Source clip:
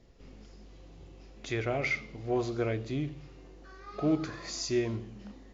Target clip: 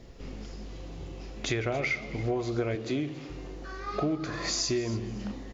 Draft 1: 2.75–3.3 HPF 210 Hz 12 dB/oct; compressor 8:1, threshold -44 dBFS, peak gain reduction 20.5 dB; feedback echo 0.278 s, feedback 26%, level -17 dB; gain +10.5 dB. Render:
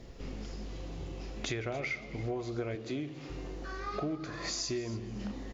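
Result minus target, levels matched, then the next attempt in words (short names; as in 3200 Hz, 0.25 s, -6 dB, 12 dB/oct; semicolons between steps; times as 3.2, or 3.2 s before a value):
compressor: peak gain reduction +6 dB
2.75–3.3 HPF 210 Hz 12 dB/oct; compressor 8:1, threshold -37 dBFS, peak gain reduction 14.5 dB; feedback echo 0.278 s, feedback 26%, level -17 dB; gain +10.5 dB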